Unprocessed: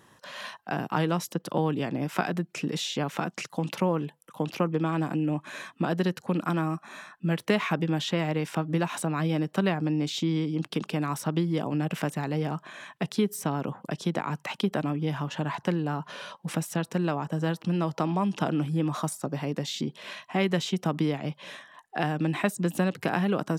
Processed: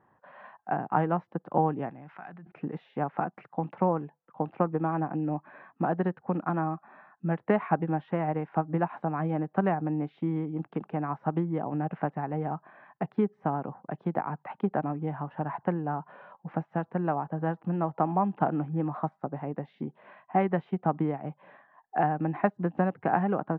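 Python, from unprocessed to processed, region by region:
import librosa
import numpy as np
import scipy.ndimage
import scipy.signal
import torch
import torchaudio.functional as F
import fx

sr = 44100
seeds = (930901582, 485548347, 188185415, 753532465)

y = fx.chain(x, sr, fx.tone_stack(knobs='5-5-5'),
    fx.env_flatten(amount_pct=100), at=(1.89, 2.52))
y = scipy.signal.sosfilt(scipy.signal.butter(4, 1800.0, 'lowpass', fs=sr, output='sos'), y)
y = fx.peak_eq(y, sr, hz=780.0, db=9.0, octaves=0.46)
y = fx.upward_expand(y, sr, threshold_db=-37.0, expansion=1.5)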